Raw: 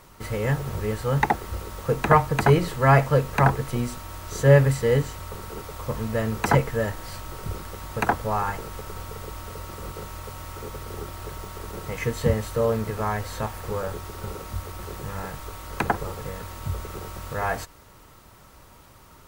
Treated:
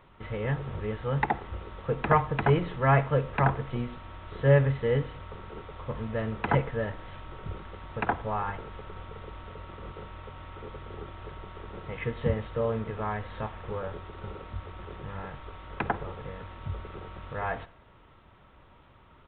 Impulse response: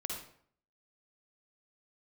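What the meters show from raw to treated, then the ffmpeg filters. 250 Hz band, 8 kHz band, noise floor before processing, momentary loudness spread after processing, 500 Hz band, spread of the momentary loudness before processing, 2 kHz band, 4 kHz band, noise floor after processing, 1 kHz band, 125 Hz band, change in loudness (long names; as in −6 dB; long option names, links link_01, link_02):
−5.5 dB, below −40 dB, −50 dBFS, 19 LU, −5.5 dB, 18 LU, −5.5 dB, −8.5 dB, −56 dBFS, −5.5 dB, −5.5 dB, −5.0 dB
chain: -filter_complex "[0:a]asplit=2[link_01][link_02];[1:a]atrim=start_sample=2205[link_03];[link_02][link_03]afir=irnorm=-1:irlink=0,volume=-15.5dB[link_04];[link_01][link_04]amix=inputs=2:normalize=0,aresample=8000,aresample=44100,volume=-6.5dB"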